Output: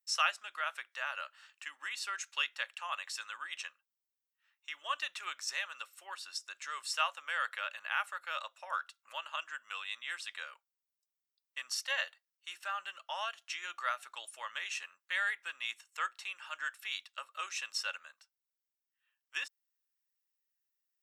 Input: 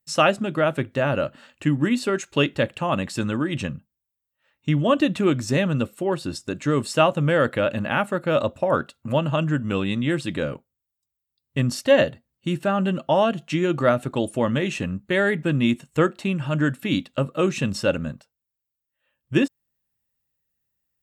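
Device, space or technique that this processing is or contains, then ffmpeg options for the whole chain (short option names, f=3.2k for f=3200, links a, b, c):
headphones lying on a table: -af "highpass=f=1.1k:w=0.5412,highpass=f=1.1k:w=1.3066,equalizer=f=5.6k:t=o:w=0.3:g=7,volume=-8dB"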